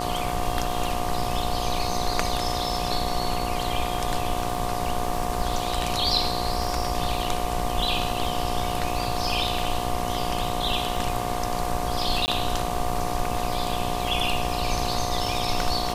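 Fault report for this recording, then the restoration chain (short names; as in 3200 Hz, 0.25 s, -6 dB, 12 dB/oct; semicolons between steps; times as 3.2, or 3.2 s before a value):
buzz 60 Hz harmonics 20 -31 dBFS
crackle 58/s -32 dBFS
tone 720 Hz -32 dBFS
12.26–12.28 gap 19 ms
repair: de-click; notch 720 Hz, Q 30; de-hum 60 Hz, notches 20; interpolate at 12.26, 19 ms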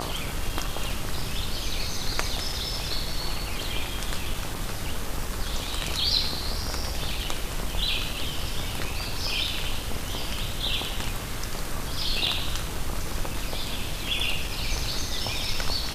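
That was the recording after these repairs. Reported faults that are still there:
none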